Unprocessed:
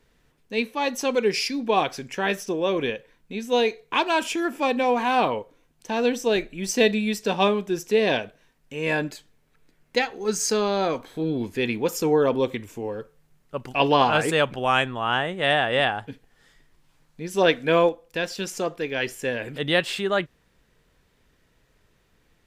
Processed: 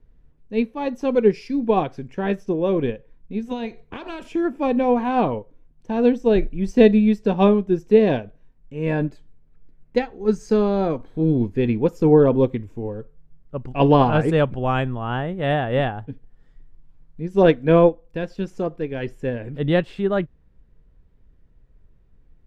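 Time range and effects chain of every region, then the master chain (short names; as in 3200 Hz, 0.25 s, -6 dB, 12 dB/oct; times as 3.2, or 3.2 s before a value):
3.45–4.27 spectral limiter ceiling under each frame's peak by 14 dB + compressor 10:1, threshold -22 dBFS
whole clip: tilt -4.5 dB/oct; upward expander 1.5:1, over -29 dBFS; gain +1.5 dB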